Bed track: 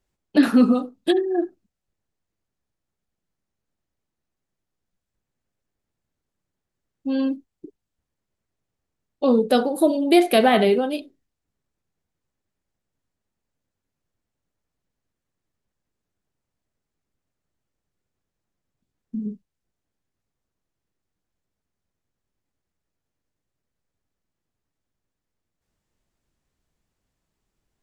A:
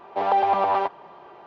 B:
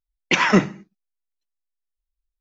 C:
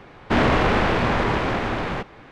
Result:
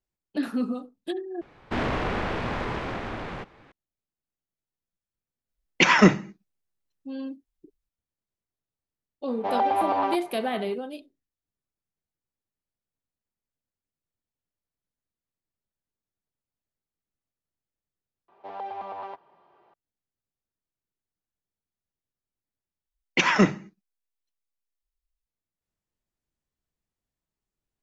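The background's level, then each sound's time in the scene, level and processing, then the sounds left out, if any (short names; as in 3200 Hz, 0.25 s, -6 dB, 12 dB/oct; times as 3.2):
bed track -12 dB
1.41 replace with C -9 dB + vibrato 1 Hz 47 cents
5.49 add B
9.28 add A -3.5 dB
18.28 replace with A -15.5 dB
22.86 replace with B -3.5 dB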